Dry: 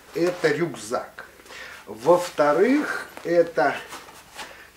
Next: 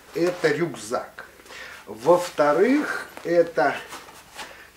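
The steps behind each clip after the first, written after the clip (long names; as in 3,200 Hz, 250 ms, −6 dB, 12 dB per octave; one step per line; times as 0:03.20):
no processing that can be heard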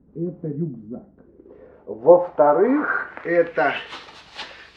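low-pass filter sweep 210 Hz → 4,000 Hz, 0:00.91–0:04.07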